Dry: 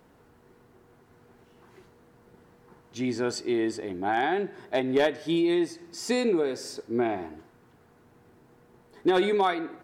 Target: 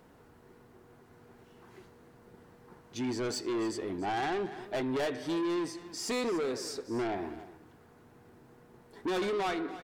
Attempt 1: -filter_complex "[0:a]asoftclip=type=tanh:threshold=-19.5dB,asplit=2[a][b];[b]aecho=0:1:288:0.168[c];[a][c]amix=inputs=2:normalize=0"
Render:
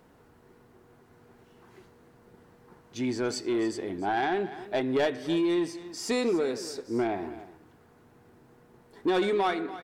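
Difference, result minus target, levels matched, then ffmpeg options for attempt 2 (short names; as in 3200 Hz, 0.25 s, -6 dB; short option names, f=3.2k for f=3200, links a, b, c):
soft clip: distortion -9 dB
-filter_complex "[0:a]asoftclip=type=tanh:threshold=-29dB,asplit=2[a][b];[b]aecho=0:1:288:0.168[c];[a][c]amix=inputs=2:normalize=0"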